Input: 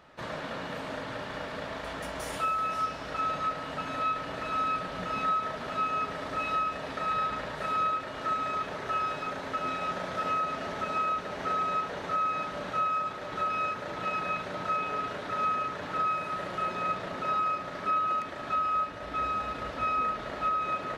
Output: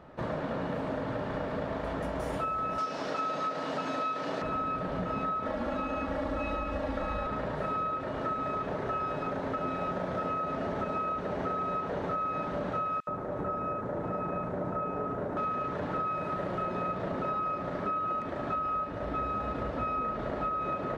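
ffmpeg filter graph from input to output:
-filter_complex "[0:a]asettb=1/sr,asplit=3[s0][s1][s2];[s0]atrim=end=2.784[s3];[s1]atrim=start=2.78:end=4.42,asetpts=PTS-STARTPTS,afade=t=in:d=0.004:c=qsin,afade=t=out:st=1.636:d=0.004:c=qsin,highpass=230,equalizer=f=5500:t=o:w=1.6:g=12,acompressor=mode=upward:threshold=0.0282:ratio=2.5:attack=3.2:release=140:knee=2.83:detection=peak[s4];[s2]atrim=start=4.416[s5];[s3][s4]acrossfade=d=0.004:c1=hsin:c2=qsin[s6];[s6][s5]acrossfade=d=0.004:c1=qsin:c2=hsin,asettb=1/sr,asplit=3[s7][s8][s9];[s7]atrim=end=5.454[s10];[s8]atrim=start=5.45:end=7.27,asetpts=PTS-STARTPTS,afade=t=in:d=0.004:c=qsin,afade=t=out:st=1.816:d=0.004:c=qsin,asubboost=boost=5.5:cutoff=110,aecho=1:1:3.6:0.98,atrim=end_sample=80262[s11];[s9]atrim=start=7.266[s12];[s10][s11]acrossfade=d=0.004:c1=hsin:c2=qsin[s13];[s13][s12]acrossfade=d=0.004:c1=qsin:c2=hsin,asettb=1/sr,asplit=3[s14][s15][s16];[s14]atrim=end=13.004[s17];[s15]atrim=start=13:end=15.37,asetpts=PTS-STARTPTS,afade=t=in:d=0.004:c=qsin,afade=t=out:st=2.366:d=0.004:c=qsin,equalizer=f=4200:w=0.61:g=-12.5,acrossover=split=3000[s18][s19];[s18]adelay=70[s20];[s20][s19]amix=inputs=2:normalize=0,atrim=end_sample=104517[s21];[s16]atrim=start=15.366[s22];[s17][s21]acrossfade=d=0.004:c1=hsin:c2=qsin[s23];[s23][s22]acrossfade=d=0.004:c1=qsin:c2=hsin,tiltshelf=f=1400:g=9,acompressor=threshold=0.0355:ratio=6"

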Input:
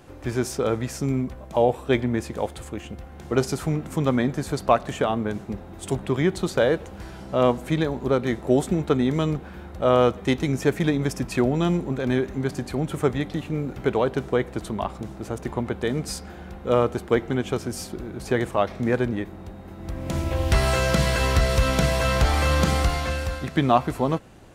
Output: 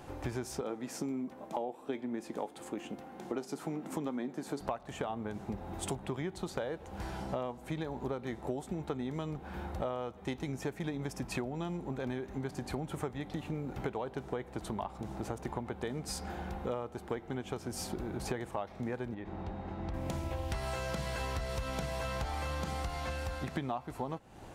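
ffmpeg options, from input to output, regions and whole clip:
-filter_complex "[0:a]asettb=1/sr,asplit=3[s0][s1][s2];[s0]atrim=end=0.614[s3];[s1]atrim=start=0.61:end=4.61,asetpts=PTS-STARTPTS,afade=t=in:d=0.004:c=qsin,afade=t=out:st=3.996:d=0.004:c=qsin,highpass=f=250:t=q:w=1.9,flanger=delay=5.2:depth=2:regen=80:speed=1.9:shape=triangular[s4];[s2]atrim=start=4.606[s5];[s3][s4]acrossfade=d=0.004:c1=hsin:c2=qsin[s6];[s6][s5]acrossfade=d=0.004:c1=qsin:c2=hsin,asettb=1/sr,asplit=3[s7][s8][s9];[s7]atrim=end=19.144[s10];[s8]atrim=start=19.14:end=19.94,asetpts=PTS-STARTPTS,afade=t=in:d=0.004:c=qsin,afade=t=out:st=0.796:d=0.004:c=qsin,lowpass=4200,acompressor=threshold=0.0282:ratio=3:attack=3.2:release=140:knee=1:detection=peak[s11];[s9]atrim=start=19.936[s12];[s10][s11]acrossfade=d=0.004:c1=hsin:c2=qsin[s13];[s13][s12]acrossfade=d=0.004:c1=qsin:c2=hsin,equalizer=f=840:w=3:g=7,acompressor=threshold=0.0251:ratio=10,volume=0.841"

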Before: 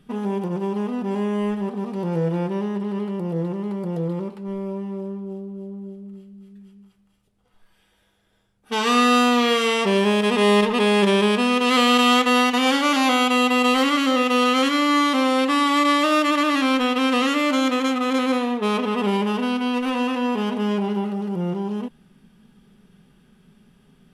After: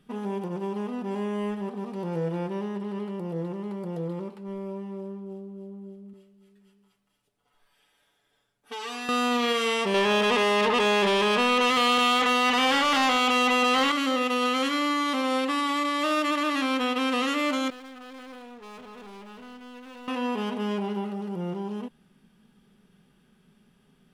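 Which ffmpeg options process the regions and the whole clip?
-filter_complex "[0:a]asettb=1/sr,asplit=3[s0][s1][s2];[s0]atrim=end=6.134[s3];[s1]atrim=start=6.13:end=9.09,asetpts=PTS-STARTPTS,afade=t=in:d=0.004:c=qsin,afade=t=out:st=2.956:d=0.004:c=qsin,lowshelf=f=250:g=-8,aecho=1:1:7:0.78,atrim=end_sample=130536,acompressor=threshold=0.0316:ratio=3:attack=3.2:release=140:knee=1:detection=peak[s4];[s2]atrim=start=9.086[s5];[s3][s4]acrossfade=d=0.004:c1=hsin:c2=qsin[s6];[s6][s5]acrossfade=d=0.004:c1=qsin:c2=hsin,asettb=1/sr,asplit=3[s7][s8][s9];[s7]atrim=end=9.944[s10];[s8]atrim=start=9.94:end=13.92,asetpts=PTS-STARTPTS,afade=t=in:d=0.004:c=qsin,afade=t=out:st=3.976:d=0.004:c=qsin,bandreject=f=2400:w=28,acontrast=21,asplit=2[s11][s12];[s12]highpass=f=720:p=1,volume=7.94,asoftclip=type=tanh:threshold=0.668[s13];[s11][s13]amix=inputs=2:normalize=0,lowpass=f=3300:p=1,volume=0.501[s14];[s9]atrim=start=13.916[s15];[s10][s14]acrossfade=d=0.004:c1=hsin:c2=qsin[s16];[s16][s15]acrossfade=d=0.004:c1=qsin:c2=hsin,asettb=1/sr,asplit=3[s17][s18][s19];[s17]atrim=end=17.704[s20];[s18]atrim=start=17.7:end=20.08,asetpts=PTS-STARTPTS,afade=t=in:d=0.004:c=qsin,afade=t=out:st=2.376:d=0.004:c=qsin,aeval=exprs='if(lt(val(0),0),0.251*val(0),val(0))':c=same,aeval=exprs='(tanh(56.2*val(0)+0.55)-tanh(0.55))/56.2':c=same[s21];[s19]atrim=start=20.076[s22];[s20][s21]acrossfade=d=0.004:c1=hsin:c2=qsin[s23];[s23][s22]acrossfade=d=0.004:c1=qsin:c2=hsin,lowshelf=f=190:g=-5.5,alimiter=limit=0.224:level=0:latency=1:release=25,volume=0.596"

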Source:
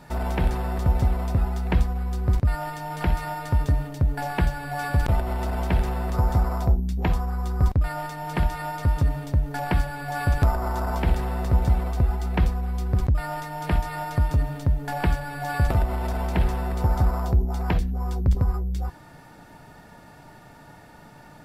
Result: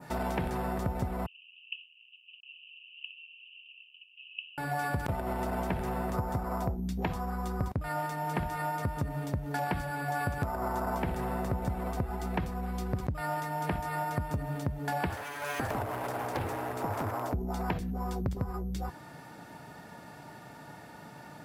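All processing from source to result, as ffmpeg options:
-filter_complex "[0:a]asettb=1/sr,asplit=3[s0][s1][s2];[s0]atrim=end=1.264[s3];[s1]atrim=start=1.26:end=4.58,asetpts=PTS-STARTPTS,afade=t=in:d=0.004:c=qsin,afade=t=out:st=3.316:d=0.004:c=qsin,aemphasis=mode=production:type=75kf,acrusher=bits=4:mix=0:aa=0.5,asuperpass=centerf=2800:order=8:qfactor=6.3[s4];[s2]atrim=start=4.576[s5];[s3][s4]acrossfade=d=0.004:c1=hsin:c2=qsin[s6];[s6][s5]acrossfade=d=0.004:c1=qsin:c2=hsin,asettb=1/sr,asplit=3[s7][s8][s9];[s7]atrim=end=15.094[s10];[s8]atrim=start=15.09:end=17.34,asetpts=PTS-STARTPTS,afade=t=in:d=0.004:c=qsin,afade=t=out:st=2.246:d=0.004:c=qsin,aeval=exprs='abs(val(0))':c=same,equalizer=f=180:w=1.6:g=-13.5[s11];[s9]atrim=start=17.336[s12];[s10][s11]acrossfade=d=0.004:c1=hsin:c2=qsin[s13];[s13][s12]acrossfade=d=0.004:c1=qsin:c2=hsin,highpass=110,adynamicequalizer=threshold=0.00251:dfrequency=4000:dqfactor=0.91:tfrequency=4000:tqfactor=0.91:attack=5:release=100:ratio=0.375:range=3.5:mode=cutabove:tftype=bell,acompressor=threshold=0.0398:ratio=6"

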